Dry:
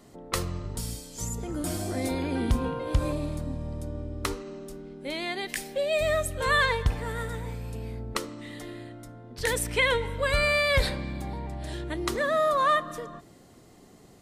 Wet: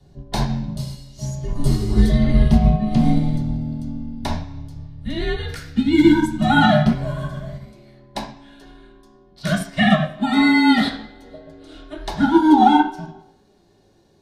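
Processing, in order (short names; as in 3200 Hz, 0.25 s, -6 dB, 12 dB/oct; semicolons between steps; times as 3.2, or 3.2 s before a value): HPF 93 Hz 24 dB/oct, from 7.65 s 480 Hz; reverb RT60 0.55 s, pre-delay 3 ms, DRR -11 dB; frequency shift -310 Hz; upward expander 1.5:1, over -28 dBFS; gain -2.5 dB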